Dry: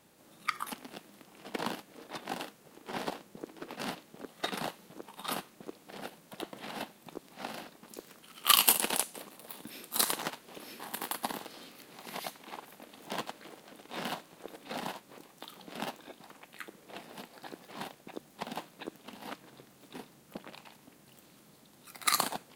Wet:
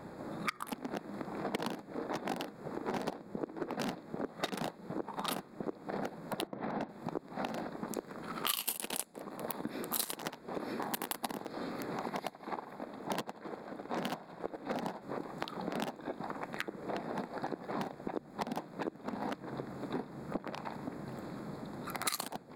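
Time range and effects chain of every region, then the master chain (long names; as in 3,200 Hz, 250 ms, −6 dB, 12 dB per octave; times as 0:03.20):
0:06.47–0:06.89: high-frequency loss of the air 250 metres + one half of a high-frequency compander decoder only
0:12.08–0:15.02: echo with a time of its own for lows and highs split 1,900 Hz, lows 82 ms, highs 178 ms, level −12.5 dB + expander for the loud parts, over −52 dBFS
whole clip: adaptive Wiener filter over 15 samples; dynamic equaliser 1,200 Hz, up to −5 dB, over −49 dBFS, Q 0.78; downward compressor 6 to 1, threshold −53 dBFS; level +18 dB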